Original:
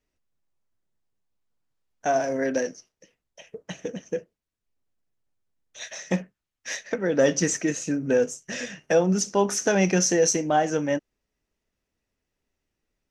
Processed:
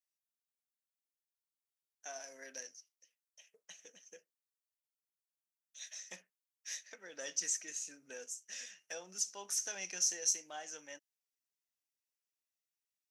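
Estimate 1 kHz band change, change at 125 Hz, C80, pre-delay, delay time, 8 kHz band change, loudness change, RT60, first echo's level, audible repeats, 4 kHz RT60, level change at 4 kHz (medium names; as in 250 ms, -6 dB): -25.0 dB, under -35 dB, no reverb, no reverb, no echo, -7.5 dB, -14.5 dB, no reverb, no echo, no echo, no reverb, -9.5 dB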